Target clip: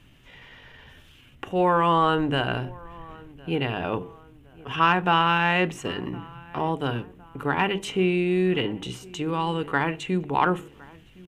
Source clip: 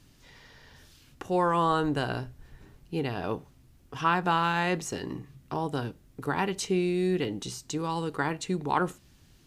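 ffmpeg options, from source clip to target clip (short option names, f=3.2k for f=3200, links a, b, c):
-filter_complex "[0:a]highshelf=f=3.7k:t=q:w=3:g=-7.5,bandreject=f=50:t=h:w=6,bandreject=f=100:t=h:w=6,bandreject=f=150:t=h:w=6,bandreject=f=200:t=h:w=6,bandreject=f=250:t=h:w=6,bandreject=f=300:t=h:w=6,bandreject=f=350:t=h:w=6,bandreject=f=400:t=h:w=6,bandreject=f=450:t=h:w=6,atempo=0.84,asoftclip=type=tanh:threshold=-9dB,asplit=2[a][b];[b]adelay=1062,lowpass=f=2k:p=1,volume=-22.5dB,asplit=2[c][d];[d]adelay=1062,lowpass=f=2k:p=1,volume=0.48,asplit=2[e][f];[f]adelay=1062,lowpass=f=2k:p=1,volume=0.48[g];[c][e][g]amix=inputs=3:normalize=0[h];[a][h]amix=inputs=2:normalize=0,volume=4.5dB"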